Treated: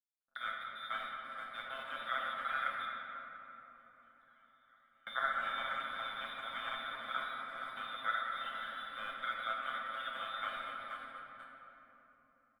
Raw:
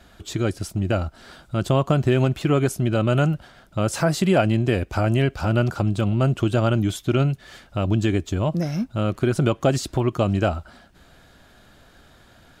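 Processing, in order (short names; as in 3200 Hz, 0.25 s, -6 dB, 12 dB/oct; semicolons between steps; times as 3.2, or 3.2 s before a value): Wiener smoothing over 15 samples; inverted band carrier 3700 Hz; feedback echo 0.471 s, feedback 56%, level -13 dB; limiter -13.5 dBFS, peak gain reduction 8.5 dB; auto-wah 580–2100 Hz, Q 3.2, up, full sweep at -31.5 dBFS; crossover distortion -47.5 dBFS; gate -53 dBFS, range -23 dB; comb 7.5 ms, depth 82%; 2.85–5.07 flipped gate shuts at -33 dBFS, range -34 dB; EQ curve 100 Hz 0 dB, 150 Hz -7 dB, 210 Hz +12 dB, 380 Hz -7 dB, 580 Hz +10 dB, 950 Hz -3 dB, 1400 Hz +14 dB, 2500 Hz -27 dB; shoebox room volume 220 m³, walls hard, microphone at 0.66 m; gain +5.5 dB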